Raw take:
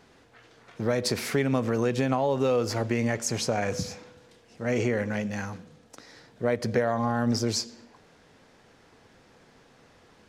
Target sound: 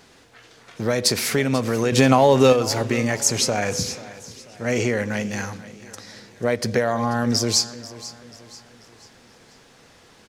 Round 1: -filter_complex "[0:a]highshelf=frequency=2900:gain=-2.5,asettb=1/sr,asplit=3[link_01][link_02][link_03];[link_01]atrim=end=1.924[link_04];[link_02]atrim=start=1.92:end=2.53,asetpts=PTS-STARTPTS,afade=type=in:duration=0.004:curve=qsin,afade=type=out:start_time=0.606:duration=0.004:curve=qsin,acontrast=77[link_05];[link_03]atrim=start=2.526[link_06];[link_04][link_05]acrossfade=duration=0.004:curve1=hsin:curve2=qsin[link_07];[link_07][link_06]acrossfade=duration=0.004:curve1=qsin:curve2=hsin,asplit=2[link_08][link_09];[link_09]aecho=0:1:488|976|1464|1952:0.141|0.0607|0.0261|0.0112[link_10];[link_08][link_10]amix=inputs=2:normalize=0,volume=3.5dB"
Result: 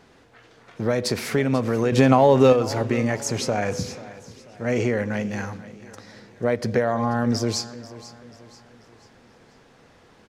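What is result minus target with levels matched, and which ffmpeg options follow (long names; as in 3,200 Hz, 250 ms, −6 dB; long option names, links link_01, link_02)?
8,000 Hz band −8.5 dB
-filter_complex "[0:a]highshelf=frequency=2900:gain=9,asettb=1/sr,asplit=3[link_01][link_02][link_03];[link_01]atrim=end=1.924[link_04];[link_02]atrim=start=1.92:end=2.53,asetpts=PTS-STARTPTS,afade=type=in:duration=0.004:curve=qsin,afade=type=out:start_time=0.606:duration=0.004:curve=qsin,acontrast=77[link_05];[link_03]atrim=start=2.526[link_06];[link_04][link_05]acrossfade=duration=0.004:curve1=hsin:curve2=qsin[link_07];[link_07][link_06]acrossfade=duration=0.004:curve1=qsin:curve2=hsin,asplit=2[link_08][link_09];[link_09]aecho=0:1:488|976|1464|1952:0.141|0.0607|0.0261|0.0112[link_10];[link_08][link_10]amix=inputs=2:normalize=0,volume=3.5dB"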